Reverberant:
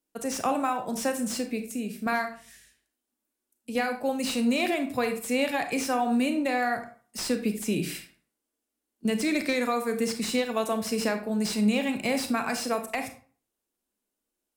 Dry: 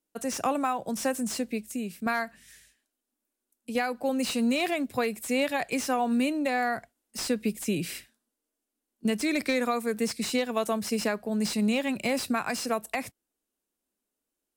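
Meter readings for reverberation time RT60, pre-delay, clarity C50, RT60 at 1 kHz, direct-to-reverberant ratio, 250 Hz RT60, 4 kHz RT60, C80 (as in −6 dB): 0.45 s, 30 ms, 9.5 dB, 0.45 s, 6.5 dB, 0.45 s, 0.30 s, 14.0 dB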